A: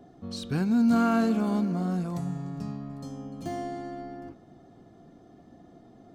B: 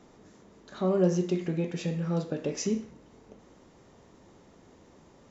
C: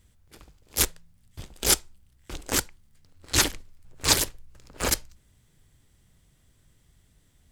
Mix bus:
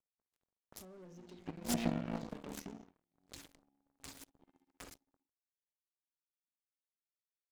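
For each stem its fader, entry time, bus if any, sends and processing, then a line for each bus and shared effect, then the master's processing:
+2.0 dB, 0.95 s, no bus, no send, vowel filter i; bass shelf 100 Hz -11.5 dB
-9.0 dB, 0.00 s, bus A, no send, level-controlled noise filter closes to 620 Hz, open at -24 dBFS
-9.5 dB, 0.00 s, bus A, no send, saturation -11.5 dBFS, distortion -15 dB; compression 1.5:1, threshold -31 dBFS, peak gain reduction 5 dB; auto duck -10 dB, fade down 0.30 s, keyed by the second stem
bus A: 0.0 dB, waveshaping leveller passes 5; compression 5:1, threshold -33 dBFS, peak gain reduction 8.5 dB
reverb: none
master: power-law waveshaper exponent 3

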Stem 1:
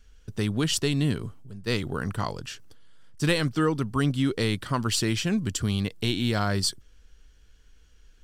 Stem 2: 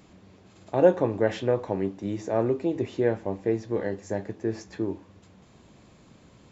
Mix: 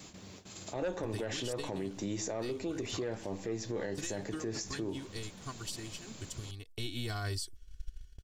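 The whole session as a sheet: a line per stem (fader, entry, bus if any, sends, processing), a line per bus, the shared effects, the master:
-12.0 dB, 0.75 s, no send, bass shelf 110 Hz +11 dB; comb 2.7 ms, depth 90%; transient shaper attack +11 dB, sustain -5 dB; auto duck -14 dB, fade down 1.70 s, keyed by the second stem
+1.5 dB, 0.00 s, no send, saturation -13.5 dBFS, distortion -15 dB; tone controls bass 0 dB, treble +6 dB; compression 6:1, threshold -31 dBFS, peak gain reduction 13.5 dB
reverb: none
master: gate with hold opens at -42 dBFS; treble shelf 2.7 kHz +10.5 dB; peak limiter -28 dBFS, peak gain reduction 18.5 dB

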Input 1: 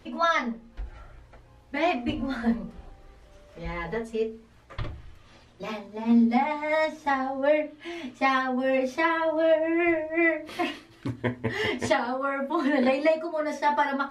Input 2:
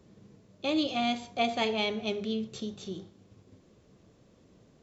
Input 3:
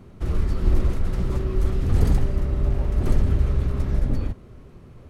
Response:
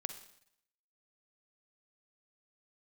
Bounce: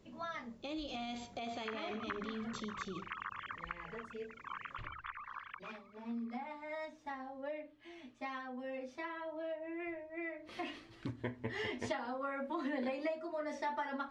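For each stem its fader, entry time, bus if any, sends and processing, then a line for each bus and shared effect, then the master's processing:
10.24 s -17 dB -> 10.89 s -4.5 dB, 0.00 s, no send, low-pass 7.2 kHz 12 dB/octave
+1.0 dB, 0.00 s, no send, peak limiter -32 dBFS, peak gain reduction 16.5 dB; upward expansion 1.5:1, over -48 dBFS
-14.0 dB, 1.45 s, no send, formants replaced by sine waves; elliptic high-pass 1.1 kHz, stop band 40 dB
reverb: none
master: compression 2.5:1, threshold -40 dBFS, peak gain reduction 12 dB

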